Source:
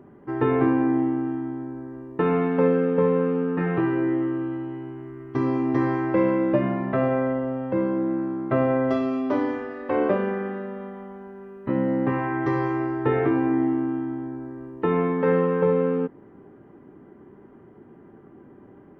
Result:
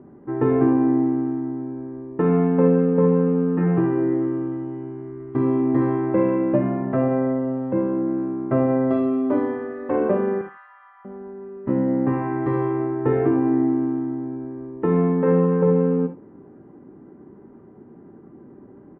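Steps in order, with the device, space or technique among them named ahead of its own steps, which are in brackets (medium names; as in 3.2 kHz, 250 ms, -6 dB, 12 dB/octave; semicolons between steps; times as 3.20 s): 10.41–11.05 s: steep high-pass 900 Hz 48 dB/octave; phone in a pocket (low-pass 3.2 kHz 12 dB/octave; peaking EQ 230 Hz +4 dB 1.7 oct; treble shelf 2.3 kHz -12 dB); delay 79 ms -19 dB; gated-style reverb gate 90 ms rising, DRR 9 dB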